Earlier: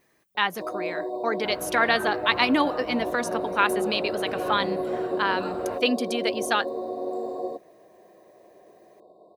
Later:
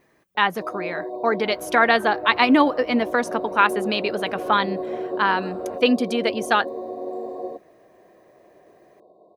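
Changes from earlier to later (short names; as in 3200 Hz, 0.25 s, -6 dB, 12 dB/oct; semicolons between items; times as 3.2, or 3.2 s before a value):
speech +6.5 dB; second sound -5.0 dB; master: add high shelf 3000 Hz -10 dB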